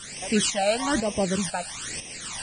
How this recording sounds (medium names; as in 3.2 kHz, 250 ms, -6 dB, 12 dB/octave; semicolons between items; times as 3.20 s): a quantiser's noise floor 6-bit, dither triangular; tremolo saw up 2 Hz, depth 65%; phasing stages 12, 1.1 Hz, lowest notch 330–1400 Hz; Vorbis